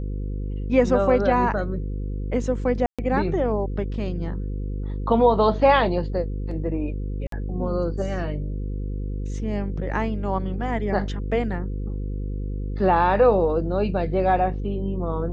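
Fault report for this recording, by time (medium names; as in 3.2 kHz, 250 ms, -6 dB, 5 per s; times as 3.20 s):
buzz 50 Hz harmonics 10 -28 dBFS
2.86–2.99 s: dropout 126 ms
7.27–7.32 s: dropout 53 ms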